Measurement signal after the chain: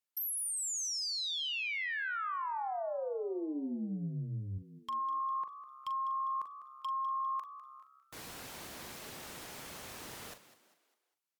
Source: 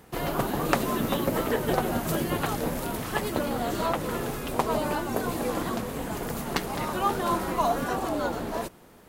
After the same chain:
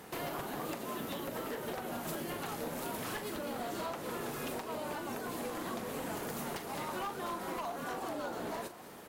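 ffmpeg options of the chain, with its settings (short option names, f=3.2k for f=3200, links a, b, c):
-filter_complex "[0:a]highpass=f=230:p=1,acompressor=threshold=-39dB:ratio=12,aeval=exprs='0.0158*(abs(mod(val(0)/0.0158+3,4)-2)-1)':c=same,asplit=2[a][b];[b]adelay=41,volume=-10dB[c];[a][c]amix=inputs=2:normalize=0,asplit=5[d][e][f][g][h];[e]adelay=201,afreqshift=67,volume=-15dB[i];[f]adelay=402,afreqshift=134,volume=-22.5dB[j];[g]adelay=603,afreqshift=201,volume=-30.1dB[k];[h]adelay=804,afreqshift=268,volume=-37.6dB[l];[d][i][j][k][l]amix=inputs=5:normalize=0,volume=4dB" -ar 44100 -c:a libmp3lame -b:a 96k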